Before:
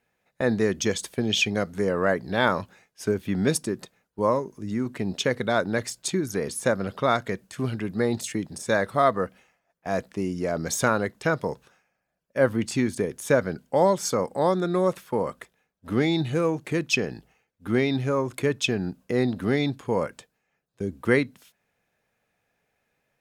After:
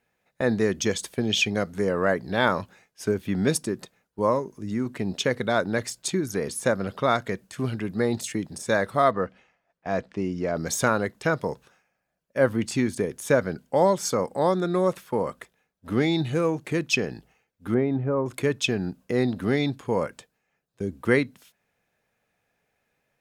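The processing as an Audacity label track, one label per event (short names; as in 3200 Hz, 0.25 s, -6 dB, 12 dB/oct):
9.110000	10.560000	LPF 4700 Hz
17.740000	18.260000	LPF 1100 Hz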